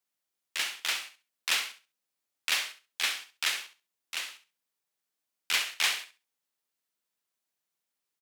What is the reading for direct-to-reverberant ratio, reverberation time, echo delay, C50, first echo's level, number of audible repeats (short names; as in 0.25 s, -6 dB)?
none, none, 67 ms, none, -11.5 dB, 2